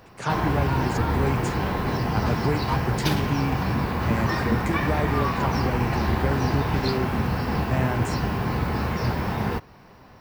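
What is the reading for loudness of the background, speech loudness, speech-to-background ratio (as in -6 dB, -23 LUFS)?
-25.5 LUFS, -29.5 LUFS, -4.0 dB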